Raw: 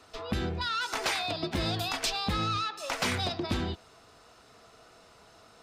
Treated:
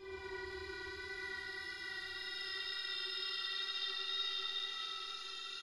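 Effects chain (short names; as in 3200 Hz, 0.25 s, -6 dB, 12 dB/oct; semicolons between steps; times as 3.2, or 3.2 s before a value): limiter -31.5 dBFS, peak gain reduction 9.5 dB; metallic resonator 380 Hz, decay 0.41 s, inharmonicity 0.002; Paulstretch 36×, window 0.10 s, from 0.61; wow and flutter 28 cents; on a send: echo 0.118 s -4.5 dB; on the sum: Schroeder reverb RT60 2.4 s, combs from 26 ms, DRR -7 dB; gain +9 dB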